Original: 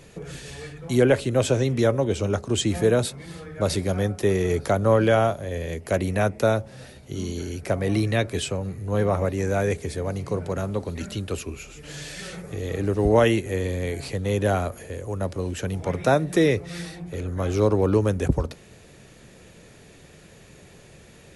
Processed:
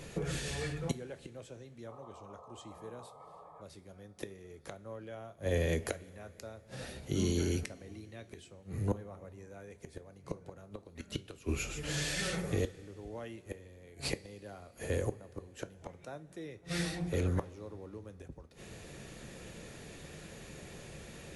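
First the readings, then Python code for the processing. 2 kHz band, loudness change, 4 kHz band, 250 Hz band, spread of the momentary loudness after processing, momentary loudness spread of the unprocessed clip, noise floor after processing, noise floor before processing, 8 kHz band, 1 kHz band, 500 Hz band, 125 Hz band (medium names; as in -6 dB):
-12.0 dB, -15.5 dB, -9.5 dB, -14.5 dB, 17 LU, 15 LU, -58 dBFS, -49 dBFS, -8.5 dB, -19.0 dB, -18.0 dB, -14.0 dB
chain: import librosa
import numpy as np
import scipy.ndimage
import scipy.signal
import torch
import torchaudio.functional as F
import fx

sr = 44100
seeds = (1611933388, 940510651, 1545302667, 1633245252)

p1 = fx.rider(x, sr, range_db=4, speed_s=2.0)
p2 = x + (p1 * librosa.db_to_amplitude(-1.0))
p3 = fx.spec_paint(p2, sr, seeds[0], shape='noise', start_s=1.87, length_s=1.75, low_hz=410.0, high_hz=1300.0, level_db=-21.0)
p4 = fx.gate_flip(p3, sr, shuts_db=-14.0, range_db=-27)
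p5 = fx.rev_double_slope(p4, sr, seeds[1], early_s=0.26, late_s=3.4, knee_db=-19, drr_db=11.5)
y = p5 * librosa.db_to_amplitude(-6.0)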